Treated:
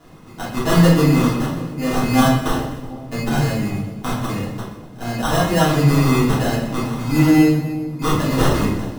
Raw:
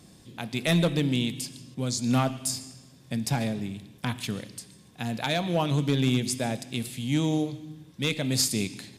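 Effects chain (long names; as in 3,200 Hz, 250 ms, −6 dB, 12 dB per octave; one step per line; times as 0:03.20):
decimation without filtering 19×
0:01.54–0:02.20: double-tracking delay 27 ms −3 dB
echo with a time of its own for lows and highs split 850 Hz, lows 370 ms, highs 125 ms, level −14 dB
convolution reverb RT60 0.60 s, pre-delay 3 ms, DRR −8 dB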